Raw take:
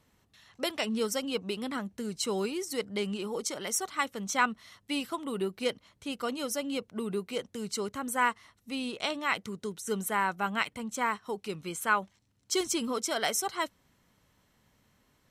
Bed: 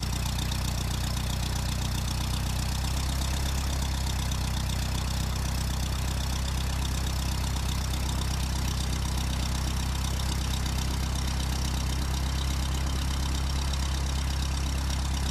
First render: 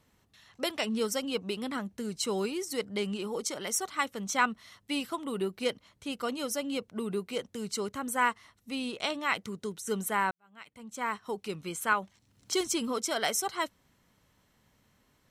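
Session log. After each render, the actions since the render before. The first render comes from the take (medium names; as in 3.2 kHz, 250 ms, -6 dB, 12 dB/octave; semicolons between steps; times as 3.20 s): 10.31–11.21 s: fade in quadratic; 11.92–12.53 s: three bands compressed up and down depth 70%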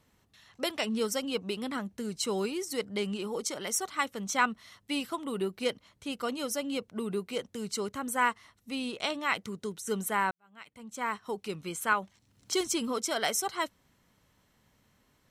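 no audible change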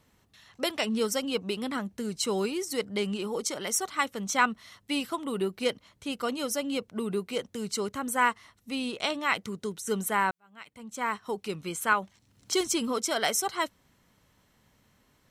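trim +2.5 dB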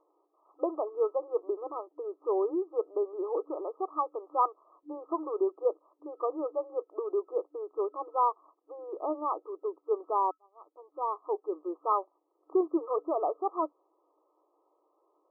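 FFT band-pass 300–1300 Hz; tilt EQ -1.5 dB/octave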